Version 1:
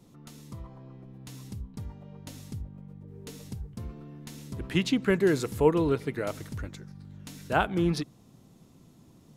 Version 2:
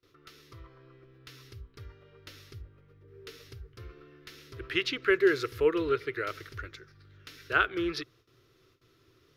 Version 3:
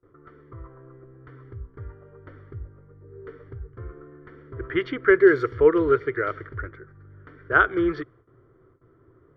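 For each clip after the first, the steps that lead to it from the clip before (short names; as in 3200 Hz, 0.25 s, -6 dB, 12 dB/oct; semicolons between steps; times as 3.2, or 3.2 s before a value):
gate with hold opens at -47 dBFS; EQ curve 120 Hz 0 dB, 200 Hz -21 dB, 380 Hz +9 dB, 840 Hz -10 dB, 1300 Hz +13 dB, 5400 Hz +7 dB, 7700 Hz -9 dB, 14000 Hz +2 dB; gain -7 dB
polynomial smoothing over 41 samples; low-pass opened by the level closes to 1300 Hz, open at -23 dBFS; gain +8.5 dB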